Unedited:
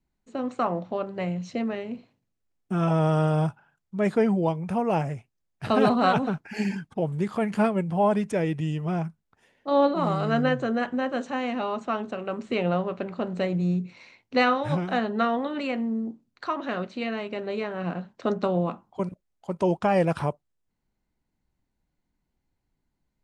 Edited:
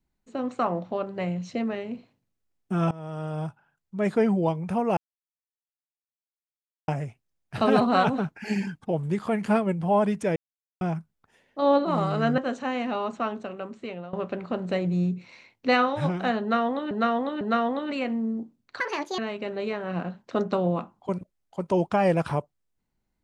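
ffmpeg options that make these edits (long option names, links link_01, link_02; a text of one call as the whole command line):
ffmpeg -i in.wav -filter_complex "[0:a]asplit=11[link_01][link_02][link_03][link_04][link_05][link_06][link_07][link_08][link_09][link_10][link_11];[link_01]atrim=end=2.91,asetpts=PTS-STARTPTS,afade=type=out:start_time=2.906:duration=0.004:curve=hsin:silence=0.0841395[link_12];[link_02]atrim=start=2.91:end=4.97,asetpts=PTS-STARTPTS,afade=type=in:duration=1.34:silence=0.0841395,afade=type=out:start_time=2.056:duration=0.004:curve=hsin,apad=pad_dur=1.91[link_13];[link_03]atrim=start=4.97:end=8.45,asetpts=PTS-STARTPTS,afade=type=in:duration=0.004:curve=hsin,afade=type=out:start_time=3.476:duration=0.004:curve=hsin[link_14];[link_04]atrim=start=8.45:end=8.9,asetpts=PTS-STARTPTS,volume=0[link_15];[link_05]atrim=start=8.9:end=10.472,asetpts=PTS-STARTPTS,afade=type=in:duration=0.004:curve=hsin[link_16];[link_06]atrim=start=11.058:end=12.81,asetpts=PTS-STARTPTS,afade=type=out:start_time=0.802:duration=0.95:silence=0.105925[link_17];[link_07]atrim=start=12.81:end=15.592,asetpts=PTS-STARTPTS,afade=type=in:duration=0.004:curve=hsin:silence=0.105925[link_18];[link_08]atrim=start=15.088:end=15.592[link_19];[link_09]atrim=start=15.088:end=16.484[link_20];[link_10]atrim=start=16.48:end=17.09,asetpts=PTS-STARTPTS,asetrate=70119,aresample=44100[link_21];[link_11]atrim=start=17.086[link_22];[link_12][link_13][link_14][link_15][link_16]concat=n=5:v=0:a=1[link_23];[link_17][link_18]concat=n=2:v=0:a=1[link_24];[link_23][link_24]acrossfade=duration=0.004:curve1=hsin:curve2=hsin[link_25];[link_25][link_19]acrossfade=duration=0.004:curve1=hsin:curve2=hsin[link_26];[link_26][link_20]acrossfade=duration=0.004:curve1=hsin:curve2=hsin[link_27];[link_27][link_21]acrossfade=duration=0.004:curve1=hsin:curve2=hsin[link_28];[link_28][link_22]acrossfade=duration=0.004:curve1=hsin:curve2=hsin" out.wav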